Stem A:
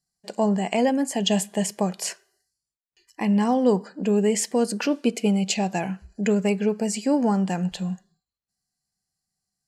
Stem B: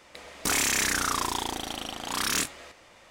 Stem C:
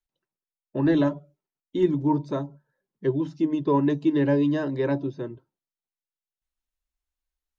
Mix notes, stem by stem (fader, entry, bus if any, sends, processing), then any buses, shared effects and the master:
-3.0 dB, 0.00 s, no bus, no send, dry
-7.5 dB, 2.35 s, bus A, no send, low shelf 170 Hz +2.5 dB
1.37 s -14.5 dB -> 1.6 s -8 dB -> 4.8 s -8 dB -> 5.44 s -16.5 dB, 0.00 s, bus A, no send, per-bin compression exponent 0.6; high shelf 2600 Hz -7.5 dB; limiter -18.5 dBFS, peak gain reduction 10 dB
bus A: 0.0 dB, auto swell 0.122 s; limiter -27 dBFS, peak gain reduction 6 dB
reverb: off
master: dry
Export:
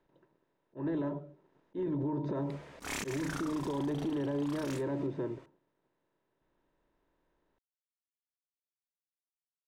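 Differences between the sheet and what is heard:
stem A: muted; stem C -14.5 dB -> -8.0 dB; master: extra high shelf 3500 Hz -9.5 dB

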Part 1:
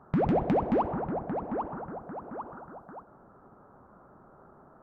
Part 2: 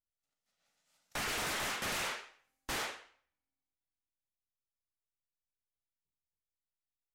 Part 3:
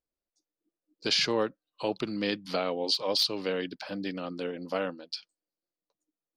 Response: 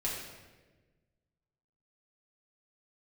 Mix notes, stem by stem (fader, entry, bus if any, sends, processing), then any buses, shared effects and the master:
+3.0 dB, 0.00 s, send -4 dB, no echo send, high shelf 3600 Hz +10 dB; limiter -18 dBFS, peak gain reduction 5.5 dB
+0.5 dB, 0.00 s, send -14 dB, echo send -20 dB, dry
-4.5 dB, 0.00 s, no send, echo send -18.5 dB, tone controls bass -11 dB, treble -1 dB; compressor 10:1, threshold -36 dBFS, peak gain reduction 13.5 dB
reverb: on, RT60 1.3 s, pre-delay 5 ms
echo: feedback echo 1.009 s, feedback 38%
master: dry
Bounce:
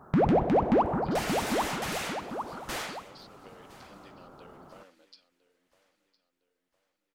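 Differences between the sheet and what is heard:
stem 1: send off; stem 3 -4.5 dB -> -14.0 dB; reverb return -8.0 dB

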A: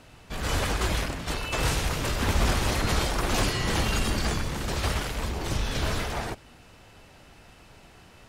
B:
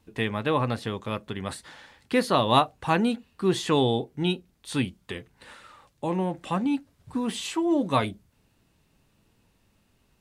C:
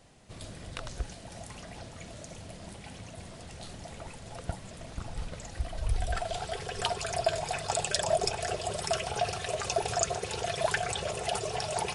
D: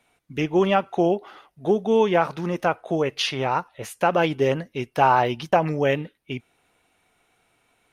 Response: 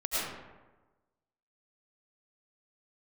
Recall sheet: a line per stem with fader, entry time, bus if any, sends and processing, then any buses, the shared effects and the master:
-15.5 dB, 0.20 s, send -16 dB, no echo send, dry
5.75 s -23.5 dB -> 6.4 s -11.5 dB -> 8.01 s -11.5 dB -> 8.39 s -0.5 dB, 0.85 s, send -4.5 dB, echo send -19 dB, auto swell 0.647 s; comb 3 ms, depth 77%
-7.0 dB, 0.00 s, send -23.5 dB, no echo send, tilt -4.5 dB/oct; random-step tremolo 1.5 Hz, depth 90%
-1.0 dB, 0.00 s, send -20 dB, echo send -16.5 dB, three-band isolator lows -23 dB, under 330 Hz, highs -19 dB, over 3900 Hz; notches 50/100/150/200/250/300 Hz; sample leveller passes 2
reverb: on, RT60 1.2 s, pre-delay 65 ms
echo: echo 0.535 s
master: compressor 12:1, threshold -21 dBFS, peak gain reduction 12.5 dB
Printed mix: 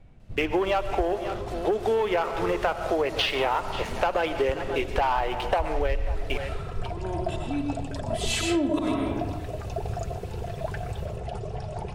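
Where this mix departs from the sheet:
stem B -23.5 dB -> -13.5 dB; stem C: missing random-step tremolo 1.5 Hz, depth 90%

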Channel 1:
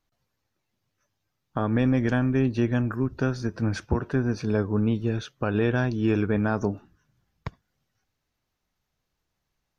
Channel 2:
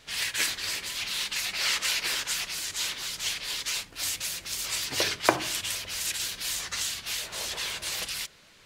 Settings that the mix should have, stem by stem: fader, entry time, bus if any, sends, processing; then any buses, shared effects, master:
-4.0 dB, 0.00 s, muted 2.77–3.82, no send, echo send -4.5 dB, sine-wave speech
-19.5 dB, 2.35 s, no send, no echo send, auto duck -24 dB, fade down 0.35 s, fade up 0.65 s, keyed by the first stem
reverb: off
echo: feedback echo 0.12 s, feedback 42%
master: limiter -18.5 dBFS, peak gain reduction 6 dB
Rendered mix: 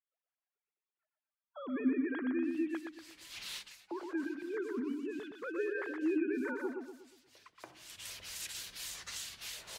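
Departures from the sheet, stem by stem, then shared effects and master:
stem 1 -4.0 dB -> -13.5 dB; stem 2 -19.5 dB -> -12.0 dB

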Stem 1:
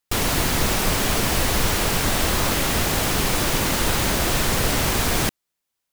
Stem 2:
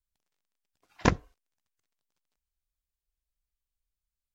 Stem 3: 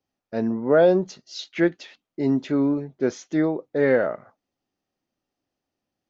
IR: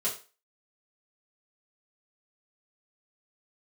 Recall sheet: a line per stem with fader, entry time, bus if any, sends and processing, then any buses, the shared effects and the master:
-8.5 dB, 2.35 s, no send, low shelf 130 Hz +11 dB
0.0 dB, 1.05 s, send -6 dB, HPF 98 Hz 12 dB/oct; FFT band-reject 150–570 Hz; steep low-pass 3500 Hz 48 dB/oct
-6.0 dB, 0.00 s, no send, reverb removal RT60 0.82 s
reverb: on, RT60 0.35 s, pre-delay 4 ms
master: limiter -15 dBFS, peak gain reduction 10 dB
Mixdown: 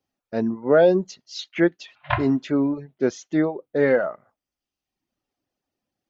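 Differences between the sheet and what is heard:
stem 1: muted; stem 3 -6.0 dB -> +1.5 dB; master: missing limiter -15 dBFS, peak gain reduction 10 dB

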